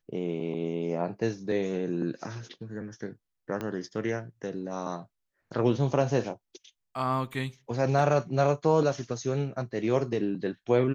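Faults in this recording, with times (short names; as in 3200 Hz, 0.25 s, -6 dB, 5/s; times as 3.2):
3.61 pop -20 dBFS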